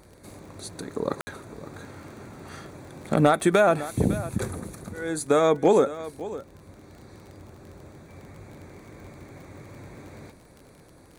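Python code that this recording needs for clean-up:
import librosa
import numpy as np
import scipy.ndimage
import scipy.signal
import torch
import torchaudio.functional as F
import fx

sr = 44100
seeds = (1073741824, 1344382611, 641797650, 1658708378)

y = fx.fix_declip(x, sr, threshold_db=-9.0)
y = fx.fix_declick_ar(y, sr, threshold=6.5)
y = fx.fix_ambience(y, sr, seeds[0], print_start_s=10.67, print_end_s=11.17, start_s=1.21, end_s=1.27)
y = fx.fix_echo_inverse(y, sr, delay_ms=557, level_db=-15.5)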